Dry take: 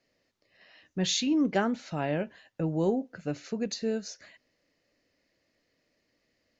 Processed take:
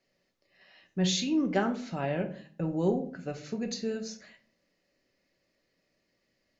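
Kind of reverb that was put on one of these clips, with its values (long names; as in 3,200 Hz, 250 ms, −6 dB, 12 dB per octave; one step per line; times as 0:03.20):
rectangular room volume 450 cubic metres, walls furnished, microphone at 1.1 metres
level −2.5 dB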